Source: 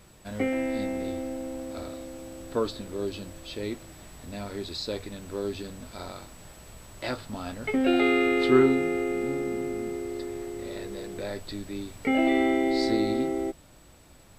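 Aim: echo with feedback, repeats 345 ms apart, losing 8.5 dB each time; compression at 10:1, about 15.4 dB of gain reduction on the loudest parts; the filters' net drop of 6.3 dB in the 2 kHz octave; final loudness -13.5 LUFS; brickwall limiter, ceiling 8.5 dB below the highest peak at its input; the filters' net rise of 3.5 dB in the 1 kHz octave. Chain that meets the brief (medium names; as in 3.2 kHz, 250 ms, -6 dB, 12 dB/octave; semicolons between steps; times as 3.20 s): peaking EQ 1 kHz +7.5 dB; peaking EQ 2 kHz -8.5 dB; compression 10:1, threshold -30 dBFS; peak limiter -27 dBFS; feedback delay 345 ms, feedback 38%, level -8.5 dB; trim +24 dB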